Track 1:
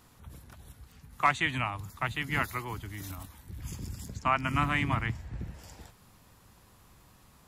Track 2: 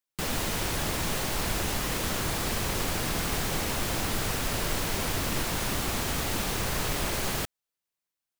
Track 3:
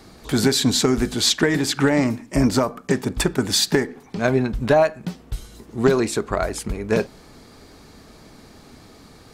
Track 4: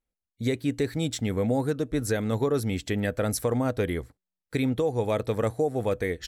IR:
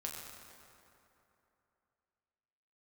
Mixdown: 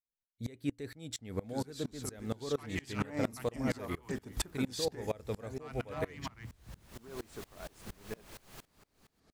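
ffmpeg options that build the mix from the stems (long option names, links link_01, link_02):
-filter_complex "[0:a]asoftclip=type=tanh:threshold=-24dB,adelay=1350,volume=-5.5dB[link_01];[1:a]alimiter=limit=-22dB:level=0:latency=1:release=391,adelay=1200,volume=-12dB,asplit=2[link_02][link_03];[link_03]volume=-17.5dB[link_04];[2:a]alimiter=limit=-11dB:level=0:latency=1:release=165,adelay=1200,volume=-7.5dB,afade=type=in:start_time=2.73:duration=0.45:silence=0.316228,afade=type=out:start_time=4.78:duration=0.75:silence=0.334965[link_05];[3:a]volume=-5dB,asplit=2[link_06][link_07];[link_07]apad=whole_len=423076[link_08];[link_02][link_08]sidechaincompress=threshold=-54dB:ratio=4:attack=6.7:release=554[link_09];[link_04]aecho=0:1:546:1[link_10];[link_01][link_09][link_05][link_06][link_10]amix=inputs=5:normalize=0,aeval=exprs='val(0)*pow(10,-26*if(lt(mod(-4.3*n/s,1),2*abs(-4.3)/1000),1-mod(-4.3*n/s,1)/(2*abs(-4.3)/1000),(mod(-4.3*n/s,1)-2*abs(-4.3)/1000)/(1-2*abs(-4.3)/1000))/20)':channel_layout=same"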